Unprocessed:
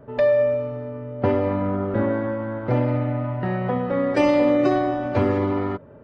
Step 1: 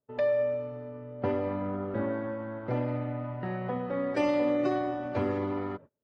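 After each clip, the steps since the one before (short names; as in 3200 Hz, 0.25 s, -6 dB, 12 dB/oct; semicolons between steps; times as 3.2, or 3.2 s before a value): gate -37 dBFS, range -33 dB; low shelf 72 Hz -8.5 dB; gain -8.5 dB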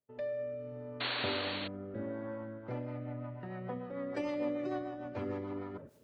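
reverse; upward compressor, threshold -31 dBFS; reverse; painted sound noise, 1–1.68, 250–4500 Hz -29 dBFS; rotary speaker horn 0.7 Hz, later 6.7 Hz, at 2.18; gain -6.5 dB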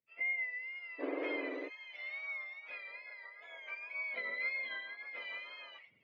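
spectrum mirrored in octaves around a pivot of 1100 Hz; wow and flutter 64 cents; speaker cabinet 300–2700 Hz, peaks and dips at 340 Hz -5 dB, 560 Hz +4 dB, 820 Hz -9 dB, 1400 Hz -5 dB, 2200 Hz +6 dB; gain -1 dB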